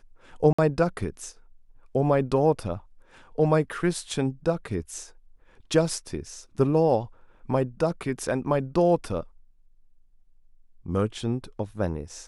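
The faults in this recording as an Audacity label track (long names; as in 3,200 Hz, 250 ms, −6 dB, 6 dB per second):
0.530000	0.580000	drop-out 55 ms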